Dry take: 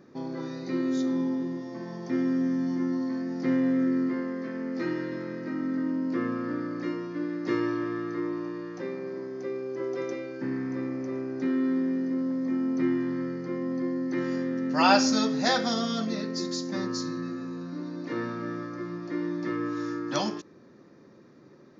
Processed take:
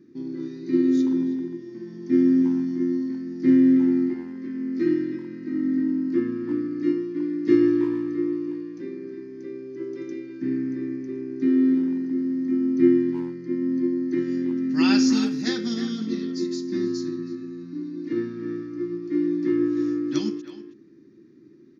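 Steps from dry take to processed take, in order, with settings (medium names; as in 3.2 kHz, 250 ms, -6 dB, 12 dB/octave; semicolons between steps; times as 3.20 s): FFT filter 180 Hz 0 dB, 340 Hz +9 dB, 590 Hz -22 dB, 1.2 kHz -13 dB, 1.9 kHz -4 dB; speakerphone echo 320 ms, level -8 dB; upward expansion 1.5:1, over -31 dBFS; trim +4.5 dB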